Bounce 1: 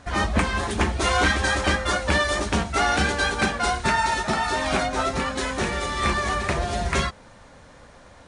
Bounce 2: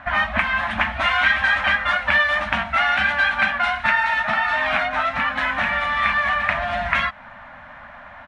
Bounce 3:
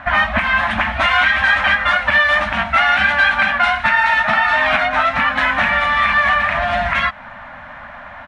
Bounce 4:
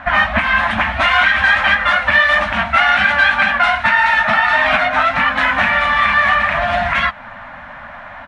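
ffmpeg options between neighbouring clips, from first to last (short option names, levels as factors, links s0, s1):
-filter_complex "[0:a]firequalizer=gain_entry='entry(160,0);entry(240,5);entry(420,-25);entry(600,10);entry(1700,15);entry(3000,6);entry(4600,-10);entry(6900,-19)':delay=0.05:min_phase=1,acrossover=split=2100[s0][s1];[s0]acompressor=threshold=0.0891:ratio=6[s2];[s2][s1]amix=inputs=2:normalize=0,volume=0.891"
-af "alimiter=limit=0.299:level=0:latency=1:release=74,volume=2"
-af "flanger=delay=3.6:depth=8.2:regen=-58:speed=1.7:shape=triangular,volume=1.88"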